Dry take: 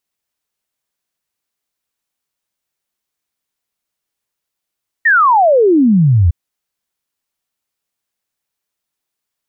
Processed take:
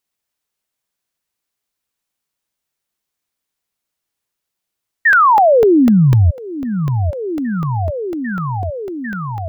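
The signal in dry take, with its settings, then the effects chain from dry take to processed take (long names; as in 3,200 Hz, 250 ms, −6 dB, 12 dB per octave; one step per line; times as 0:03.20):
exponential sine sweep 1,900 Hz → 78 Hz 1.26 s −6.5 dBFS
on a send: echo whose low-pass opens from repeat to repeat 798 ms, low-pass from 200 Hz, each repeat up 1 octave, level −6 dB
on the sum: regular buffer underruns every 0.25 s, samples 64, zero, from 0:00.38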